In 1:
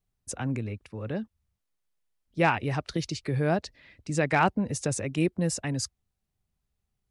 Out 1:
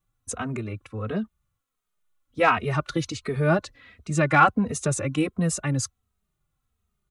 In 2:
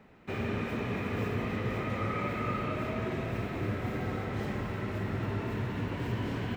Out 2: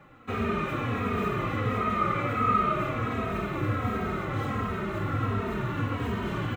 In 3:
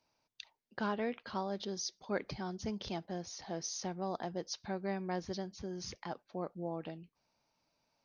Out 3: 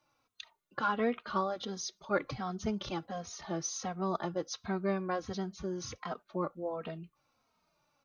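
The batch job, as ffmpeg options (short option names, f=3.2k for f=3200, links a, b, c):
-filter_complex "[0:a]acontrast=66,superequalizer=10b=2.51:14b=0.562,asplit=2[a][b];[b]adelay=2.9,afreqshift=-1.4[c];[a][c]amix=inputs=2:normalize=1"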